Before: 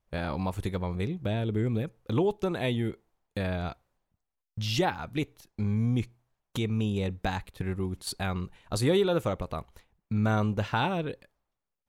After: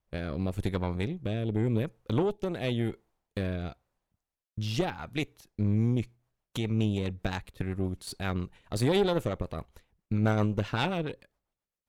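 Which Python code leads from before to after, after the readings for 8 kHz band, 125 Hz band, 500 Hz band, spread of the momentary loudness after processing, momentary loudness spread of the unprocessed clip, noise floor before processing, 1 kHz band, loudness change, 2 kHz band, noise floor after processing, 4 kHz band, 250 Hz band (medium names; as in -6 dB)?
-4.0 dB, 0.0 dB, -1.5 dB, 11 LU, 11 LU, -85 dBFS, -3.5 dB, -0.5 dB, -2.0 dB, under -85 dBFS, -2.0 dB, 0.0 dB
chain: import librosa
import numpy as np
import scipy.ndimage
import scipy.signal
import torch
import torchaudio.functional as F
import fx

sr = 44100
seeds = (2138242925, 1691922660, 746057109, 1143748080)

y = fx.rotary_switch(x, sr, hz=0.9, then_hz=7.5, switch_at_s=5.47)
y = fx.cheby_harmonics(y, sr, harmonics=(4, 8), levels_db=(-17, -30), full_scale_db=-13.5)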